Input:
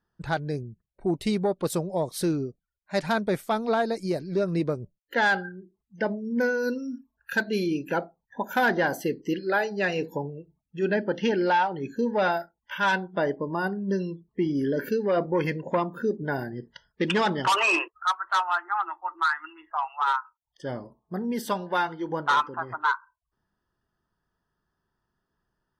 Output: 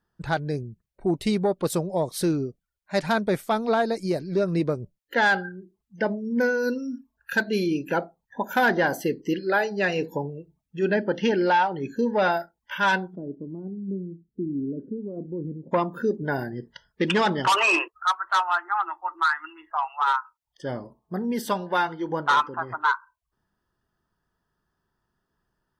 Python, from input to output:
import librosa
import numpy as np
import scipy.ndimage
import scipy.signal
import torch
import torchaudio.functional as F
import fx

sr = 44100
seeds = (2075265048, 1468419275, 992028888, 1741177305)

y = fx.ladder_lowpass(x, sr, hz=380.0, resonance_pct=30, at=(13.14, 15.71), fade=0.02)
y = F.gain(torch.from_numpy(y), 2.0).numpy()